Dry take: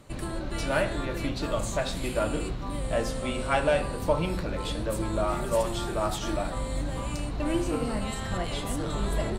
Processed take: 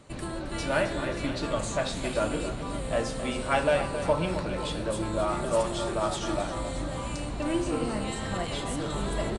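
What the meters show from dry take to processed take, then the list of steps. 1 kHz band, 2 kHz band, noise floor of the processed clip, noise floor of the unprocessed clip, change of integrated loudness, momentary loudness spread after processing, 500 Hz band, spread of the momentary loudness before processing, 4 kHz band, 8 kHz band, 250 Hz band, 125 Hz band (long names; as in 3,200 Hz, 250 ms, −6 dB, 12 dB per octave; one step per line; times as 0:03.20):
+0.5 dB, +0.5 dB, −35 dBFS, −34 dBFS, 0.0 dB, 6 LU, +0.5 dB, 5 LU, +0.5 dB, +0.5 dB, 0.0 dB, −2.0 dB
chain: repeating echo 267 ms, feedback 58%, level −10.5 dB
downsampling to 22,050 Hz
low-shelf EQ 74 Hz −7 dB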